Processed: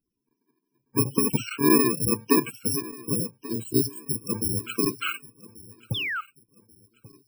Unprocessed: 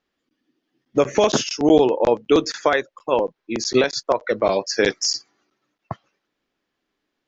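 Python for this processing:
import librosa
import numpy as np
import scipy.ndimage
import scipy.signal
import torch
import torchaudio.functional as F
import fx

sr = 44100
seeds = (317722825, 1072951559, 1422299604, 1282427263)

p1 = fx.bit_reversed(x, sr, seeds[0], block=64)
p2 = fx.spec_topn(p1, sr, count=64)
p3 = fx.high_shelf(p2, sr, hz=4300.0, db=-9.5)
p4 = fx.ellip_bandstop(p3, sr, low_hz=650.0, high_hz=3800.0, order=3, stop_db=40, at=(3.14, 4.13), fade=0.02)
p5 = fx.peak_eq(p4, sr, hz=110.0, db=9.0, octaves=0.52)
p6 = p5 + fx.echo_feedback(p5, sr, ms=1135, feedback_pct=33, wet_db=-20.0, dry=0)
y = fx.spec_paint(p6, sr, seeds[1], shape='fall', start_s=5.94, length_s=0.27, low_hz=1200.0, high_hz=3700.0, level_db=-29.0)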